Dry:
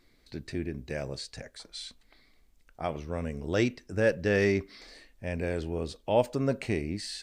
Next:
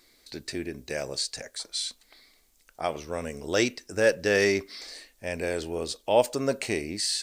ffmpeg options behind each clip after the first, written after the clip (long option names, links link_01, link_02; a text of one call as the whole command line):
ffmpeg -i in.wav -af "bass=frequency=250:gain=-11,treble=frequency=4000:gain=10,volume=4dB" out.wav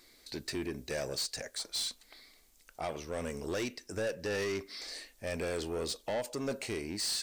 ffmpeg -i in.wav -af "alimiter=limit=-18dB:level=0:latency=1:release=486,asoftclip=type=tanh:threshold=-29.5dB" out.wav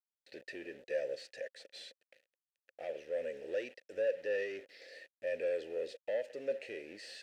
ffmpeg -i in.wav -filter_complex "[0:a]acrusher=bits=7:mix=0:aa=0.000001,asplit=3[link_01][link_02][link_03];[link_01]bandpass=frequency=530:width_type=q:width=8,volume=0dB[link_04];[link_02]bandpass=frequency=1840:width_type=q:width=8,volume=-6dB[link_05];[link_03]bandpass=frequency=2480:width_type=q:width=8,volume=-9dB[link_06];[link_04][link_05][link_06]amix=inputs=3:normalize=0,volume=5.5dB" out.wav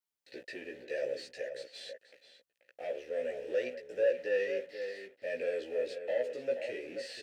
ffmpeg -i in.wav -filter_complex "[0:a]asplit=2[link_01][link_02];[link_02]adelay=16,volume=-2dB[link_03];[link_01][link_03]amix=inputs=2:normalize=0,asplit=2[link_04][link_05];[link_05]adelay=484,volume=-8dB,highshelf=frequency=4000:gain=-10.9[link_06];[link_04][link_06]amix=inputs=2:normalize=0,volume=1dB" out.wav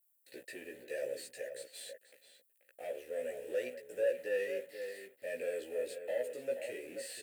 ffmpeg -i in.wav -af "aexciter=amount=9.9:drive=5.1:freq=7900,volume=-3.5dB" out.wav